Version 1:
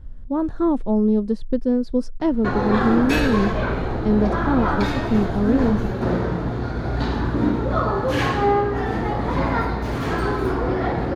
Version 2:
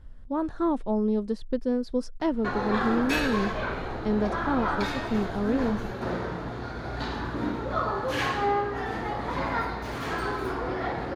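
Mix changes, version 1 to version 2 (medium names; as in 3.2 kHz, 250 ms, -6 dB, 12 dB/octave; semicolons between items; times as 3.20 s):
background -3.0 dB; master: add bass shelf 490 Hz -9.5 dB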